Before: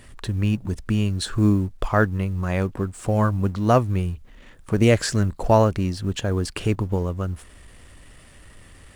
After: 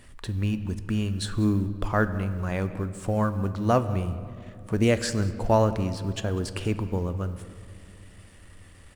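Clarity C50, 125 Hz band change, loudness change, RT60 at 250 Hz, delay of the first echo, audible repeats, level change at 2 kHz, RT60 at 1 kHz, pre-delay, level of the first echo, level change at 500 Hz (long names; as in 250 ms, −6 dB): 12.5 dB, −4.5 dB, −4.5 dB, 3.4 s, 194 ms, 1, −4.0 dB, 2.2 s, 3 ms, −21.0 dB, −4.0 dB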